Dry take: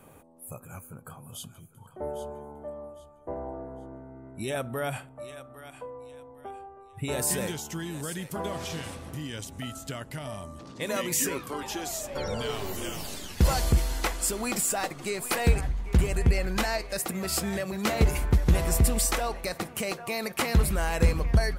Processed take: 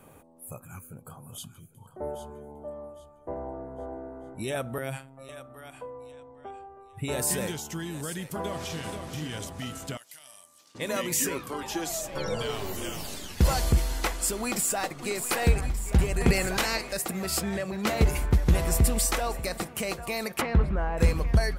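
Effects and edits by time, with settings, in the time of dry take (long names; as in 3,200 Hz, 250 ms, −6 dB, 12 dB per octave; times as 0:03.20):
0:00.61–0:02.71: auto-filter notch saw up 1.3 Hz 360–4,900 Hz
0:03.34–0:03.90: delay throw 440 ms, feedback 30%, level −2.5 dB
0:04.78–0:05.29: phases set to zero 134 Hz
0:06.12–0:06.70: elliptic low-pass filter 8,100 Hz
0:08.36–0:09.00: delay throw 480 ms, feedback 55%, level −6 dB
0:09.97–0:10.75: first difference
0:11.74–0:12.43: comb filter 6.1 ms
0:14.43–0:15.02: delay throw 590 ms, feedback 65%, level −9 dB
0:16.20–0:16.91: ceiling on every frequency bin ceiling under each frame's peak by 15 dB
0:17.41–0:17.87: high-shelf EQ 8,000 Hz −12 dB
0:18.59–0:19.05: delay throw 590 ms, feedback 45%, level −16.5 dB
0:20.40–0:20.97: low-pass filter 2,500 Hz → 1,100 Hz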